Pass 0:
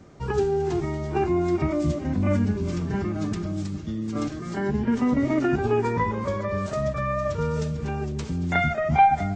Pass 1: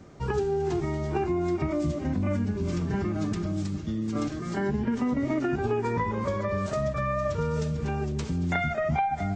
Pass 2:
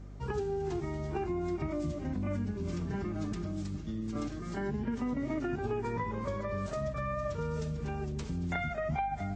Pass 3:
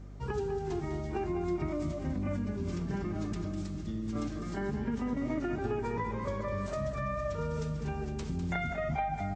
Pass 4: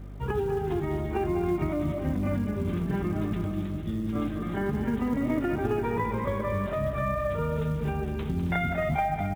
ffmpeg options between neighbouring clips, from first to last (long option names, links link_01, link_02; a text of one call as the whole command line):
ffmpeg -i in.wav -af "acompressor=threshold=-23dB:ratio=10" out.wav
ffmpeg -i in.wav -af "aeval=exprs='val(0)+0.0126*(sin(2*PI*50*n/s)+sin(2*PI*2*50*n/s)/2+sin(2*PI*3*50*n/s)/3+sin(2*PI*4*50*n/s)/4+sin(2*PI*5*50*n/s)/5)':channel_layout=same,volume=-7dB" out.wav
ffmpeg -i in.wav -af "aecho=1:1:201|465:0.335|0.112" out.wav
ffmpeg -i in.wav -af "aresample=8000,aresample=44100,aecho=1:1:270:0.266,acrusher=bits=8:mode=log:mix=0:aa=0.000001,volume=5.5dB" out.wav